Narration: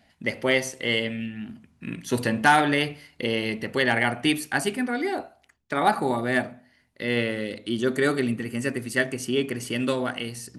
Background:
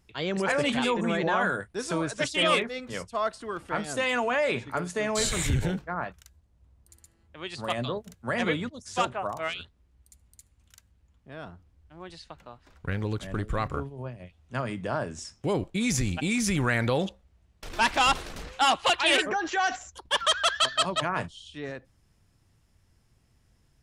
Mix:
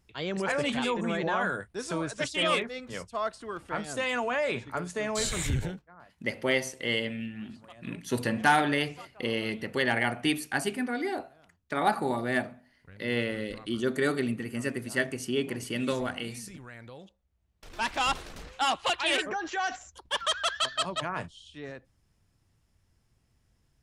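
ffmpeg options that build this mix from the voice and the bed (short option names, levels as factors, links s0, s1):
-filter_complex "[0:a]adelay=6000,volume=0.596[s0];[1:a]volume=4.73,afade=t=out:st=5.59:d=0.24:silence=0.125893,afade=t=in:st=17.06:d=1.07:silence=0.149624[s1];[s0][s1]amix=inputs=2:normalize=0"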